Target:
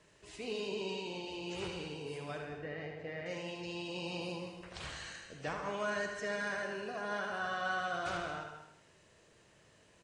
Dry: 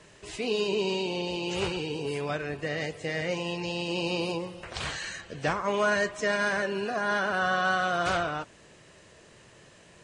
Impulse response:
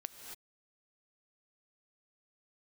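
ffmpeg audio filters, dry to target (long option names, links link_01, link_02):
-filter_complex "[0:a]asettb=1/sr,asplit=3[link_01][link_02][link_03];[link_01]atrim=end=2.424[link_04];[link_02]atrim=start=2.42:end=3.26,asetpts=PTS-STARTPTS,afade=type=in:duration=0.004:curve=qsin,afade=type=out:start_time=0.836:duration=0.004:curve=qsin,lowpass=2300[link_05];[link_03]atrim=start=3.256[link_06];[link_04][link_05]acrossfade=duration=0.004:curve1=hsin:curve2=qsin[link_07];[link_07][link_06]acrossfade=duration=0.004:curve1=qsin:curve2=hsin,aecho=1:1:78|156|234|312|390:0.447|0.201|0.0905|0.0407|0.0183[link_08];[1:a]atrim=start_sample=2205,afade=type=out:start_time=0.27:duration=0.01,atrim=end_sample=12348[link_09];[link_08][link_09]afir=irnorm=-1:irlink=0,volume=-7.5dB"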